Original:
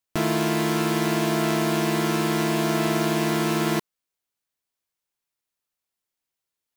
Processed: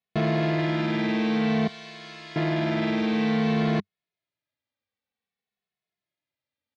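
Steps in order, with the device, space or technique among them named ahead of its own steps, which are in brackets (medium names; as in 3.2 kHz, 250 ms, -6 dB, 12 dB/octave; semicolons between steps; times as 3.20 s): 1.67–2.36 s: pre-emphasis filter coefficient 0.97; barber-pole flanger into a guitar amplifier (endless flanger 2.3 ms -0.54 Hz; saturation -22.5 dBFS, distortion -15 dB; cabinet simulation 79–3700 Hz, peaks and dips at 97 Hz +3 dB, 200 Hz +4 dB, 350 Hz -6 dB, 970 Hz -8 dB, 1.4 kHz -7 dB, 2.9 kHz -5 dB); trim +6 dB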